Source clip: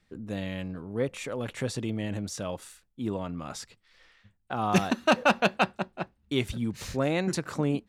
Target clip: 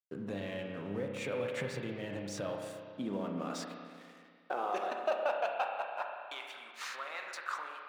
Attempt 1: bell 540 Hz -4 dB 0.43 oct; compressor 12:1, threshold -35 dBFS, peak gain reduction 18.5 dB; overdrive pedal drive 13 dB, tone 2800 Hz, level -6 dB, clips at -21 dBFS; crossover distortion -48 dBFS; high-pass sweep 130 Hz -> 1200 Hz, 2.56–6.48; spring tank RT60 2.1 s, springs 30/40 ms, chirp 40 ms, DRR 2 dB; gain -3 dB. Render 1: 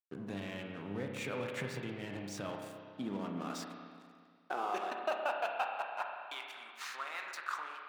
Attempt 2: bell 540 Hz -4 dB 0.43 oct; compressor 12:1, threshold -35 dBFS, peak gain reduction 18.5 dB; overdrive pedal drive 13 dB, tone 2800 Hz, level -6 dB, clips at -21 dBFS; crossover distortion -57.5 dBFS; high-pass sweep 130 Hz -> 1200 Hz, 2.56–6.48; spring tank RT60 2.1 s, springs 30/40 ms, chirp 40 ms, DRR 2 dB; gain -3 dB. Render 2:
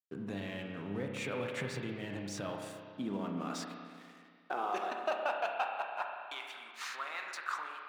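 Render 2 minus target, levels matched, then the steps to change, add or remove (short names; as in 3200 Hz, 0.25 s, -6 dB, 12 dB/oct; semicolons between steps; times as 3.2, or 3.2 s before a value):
500 Hz band -2.5 dB
change: bell 540 Hz +4 dB 0.43 oct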